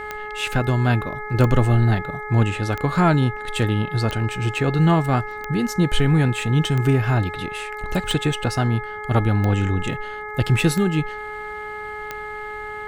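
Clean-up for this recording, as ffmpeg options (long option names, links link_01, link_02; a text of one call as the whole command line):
ffmpeg -i in.wav -af "adeclick=threshold=4,bandreject=frequency=422.7:width_type=h:width=4,bandreject=frequency=845.4:width_type=h:width=4,bandreject=frequency=1268.1:width_type=h:width=4,bandreject=frequency=1690.8:width_type=h:width=4,bandreject=frequency=2113.5:width_type=h:width=4" out.wav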